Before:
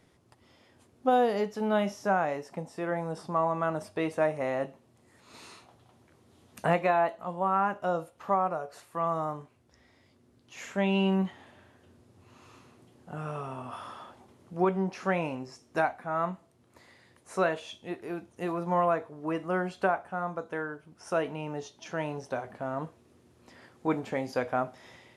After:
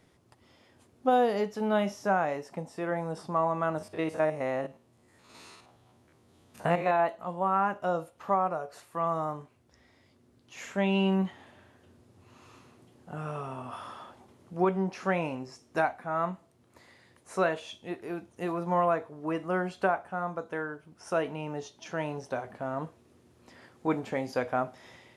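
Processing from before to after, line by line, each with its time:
3.78–7.00 s: spectrogram pixelated in time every 50 ms

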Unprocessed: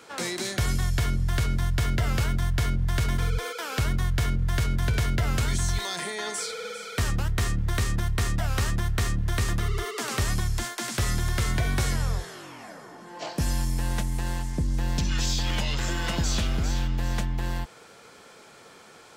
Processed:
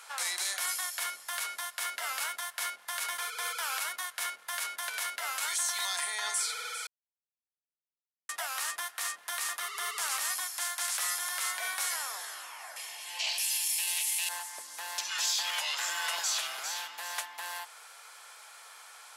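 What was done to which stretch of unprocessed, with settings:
6.87–8.29 s: mute
12.76–14.29 s: resonant high shelf 1.9 kHz +10.5 dB, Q 3
whole clip: high-pass 790 Hz 24 dB/octave; peaking EQ 11 kHz +11 dB 0.63 oct; peak limiter -21.5 dBFS

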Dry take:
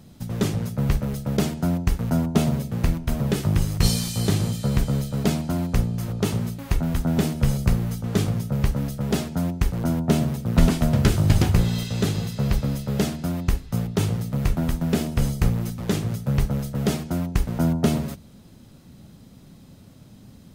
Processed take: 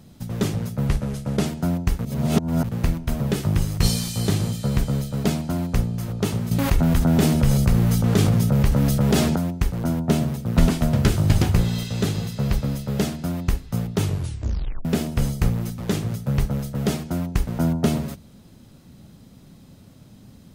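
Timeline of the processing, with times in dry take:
0.87–1.46 s: CVSD coder 64 kbps
2.05–2.69 s: reverse
6.51–9.36 s: level flattener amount 70%
14.02 s: tape stop 0.83 s

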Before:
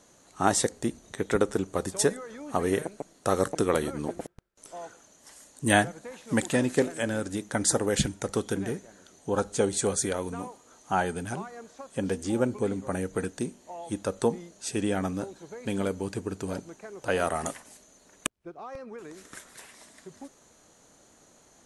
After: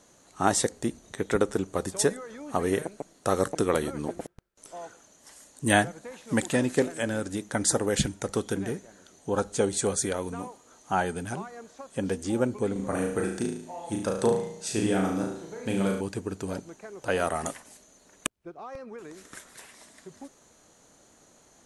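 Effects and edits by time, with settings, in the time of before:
12.72–16.01 s: flutter echo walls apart 6.2 m, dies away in 0.63 s

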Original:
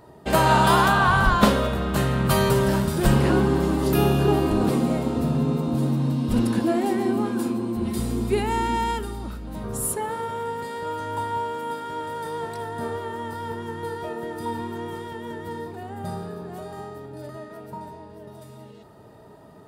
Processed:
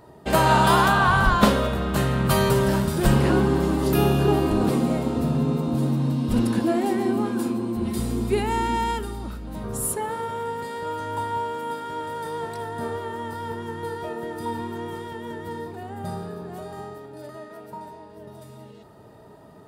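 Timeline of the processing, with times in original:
16.95–18.17 s: peaking EQ 88 Hz -7.5 dB 2.5 oct

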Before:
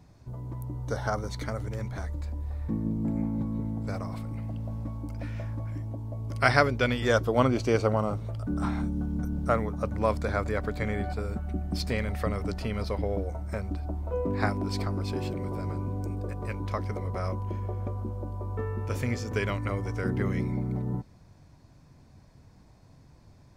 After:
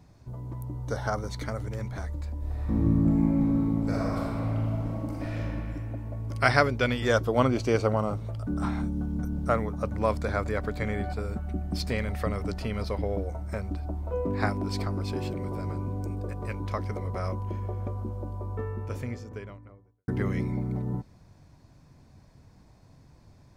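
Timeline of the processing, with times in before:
2.37–5.38 s: reverb throw, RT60 2.8 s, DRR -6 dB
18.25–20.08 s: studio fade out

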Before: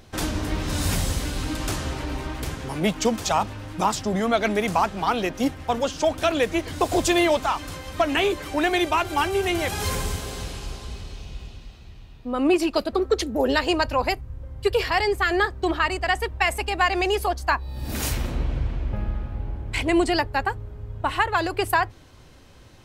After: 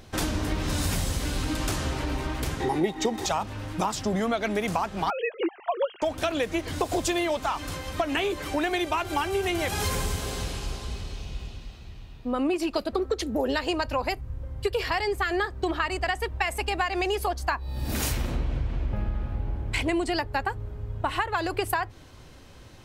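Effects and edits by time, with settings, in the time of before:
2.60–3.26 s: small resonant body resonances 370/800/1900/3700 Hz, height 17 dB
5.10–6.02 s: formants replaced by sine waves
whole clip: compression, threshold -24 dBFS; trim +1 dB

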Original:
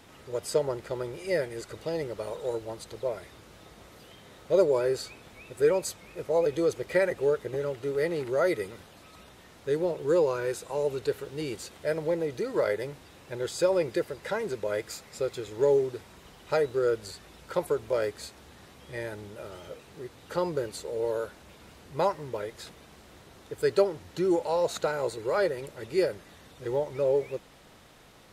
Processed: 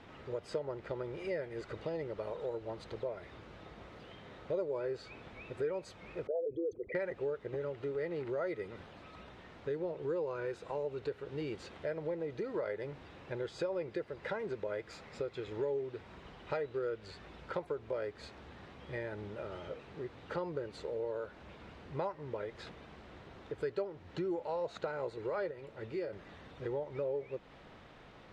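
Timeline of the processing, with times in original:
6.27–6.95 s: resonances exaggerated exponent 3
15.33–17.14 s: dynamic bell 2.7 kHz, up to +4 dB, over -48 dBFS, Q 0.92
25.51–26.13 s: feedback comb 110 Hz, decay 0.21 s
whole clip: low-pass 2.9 kHz 12 dB/octave; compression 3:1, threshold -37 dBFS

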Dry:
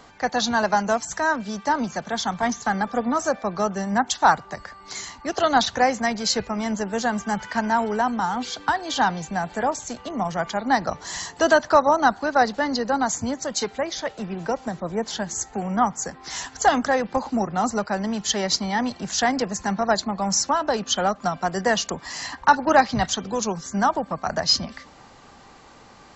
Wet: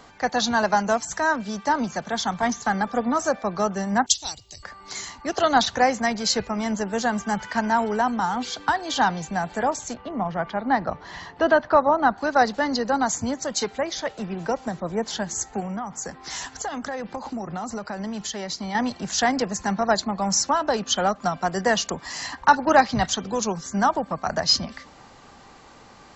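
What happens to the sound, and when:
4.06–4.63 s: FFT filter 110 Hz 0 dB, 170 Hz -21 dB, 330 Hz -14 dB, 1.5 kHz -29 dB, 2.9 kHz +1 dB, 5.2 kHz +7 dB
9.94–12.18 s: distance through air 300 m
15.60–18.75 s: compression, threshold -27 dBFS

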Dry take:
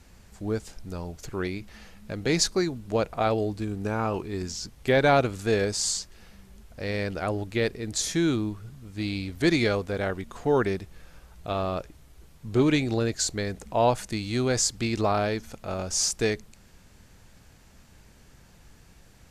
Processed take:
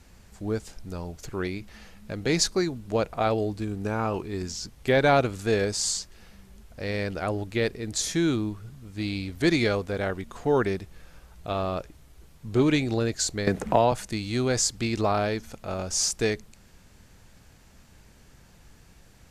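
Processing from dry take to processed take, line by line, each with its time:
13.47–13.92 s: three bands compressed up and down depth 100%

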